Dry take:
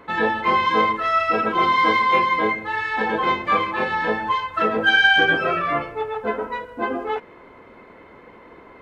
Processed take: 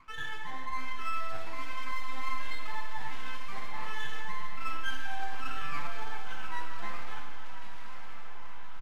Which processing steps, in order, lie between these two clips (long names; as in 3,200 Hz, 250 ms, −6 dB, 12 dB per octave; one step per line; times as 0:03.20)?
reversed playback
downward compressor, threshold −28 dBFS, peak gain reduction 15.5 dB
reversed playback
hum removal 53.2 Hz, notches 36
LFO wah 1.3 Hz 730–1,600 Hz, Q 5.4
half-wave rectification
on a send: feedback delay with all-pass diffusion 1,132 ms, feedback 55%, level −9 dB
on the sum: full-wave rectification
parametric band 480 Hz −5.5 dB 0.76 octaves
double-tracking delay 15 ms −13 dB
four-comb reverb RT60 1.8 s, combs from 27 ms, DRR 3 dB
level +3.5 dB
AAC 192 kbit/s 48,000 Hz